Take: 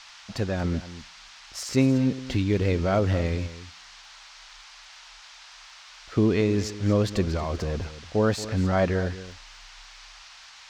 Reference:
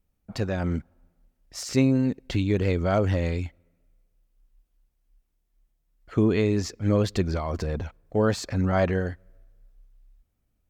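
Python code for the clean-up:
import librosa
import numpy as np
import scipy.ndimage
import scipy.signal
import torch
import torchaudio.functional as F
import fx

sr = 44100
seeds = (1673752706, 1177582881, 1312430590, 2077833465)

y = fx.fix_declick_ar(x, sr, threshold=6.5)
y = fx.noise_reduce(y, sr, print_start_s=3.85, print_end_s=4.35, reduce_db=23.0)
y = fx.fix_echo_inverse(y, sr, delay_ms=229, level_db=-14.5)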